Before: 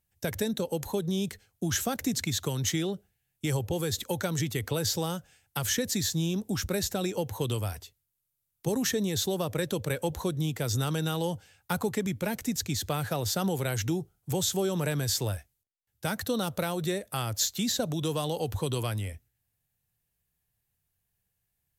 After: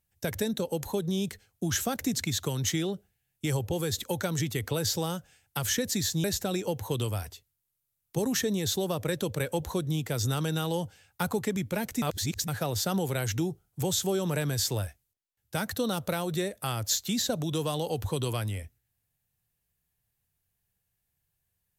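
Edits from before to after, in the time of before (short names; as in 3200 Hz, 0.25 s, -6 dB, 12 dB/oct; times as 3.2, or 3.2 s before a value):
6.24–6.74 cut
12.52–12.98 reverse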